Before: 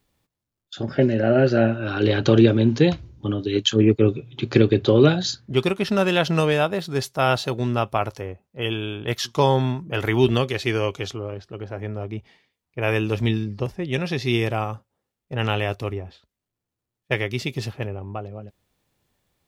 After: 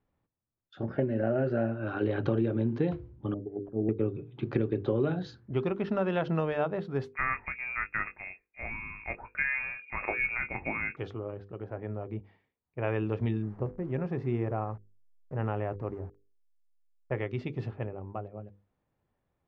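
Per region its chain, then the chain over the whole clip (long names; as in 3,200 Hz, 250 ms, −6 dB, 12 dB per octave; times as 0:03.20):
0:03.34–0:03.89: phase distortion by the signal itself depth 0.2 ms + transistor ladder low-pass 720 Hz, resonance 35%
0:07.13–0:10.97: double-tracking delay 21 ms −8 dB + voice inversion scrambler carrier 2,600 Hz
0:13.42–0:17.18: hold until the input has moved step −39 dBFS + parametric band 3,500 Hz −13.5 dB 1.3 octaves
whole clip: low-pass filter 1,500 Hz 12 dB per octave; mains-hum notches 50/100/150/200/250/300/350/400/450/500 Hz; downward compressor 4 to 1, threshold −19 dBFS; level −5.5 dB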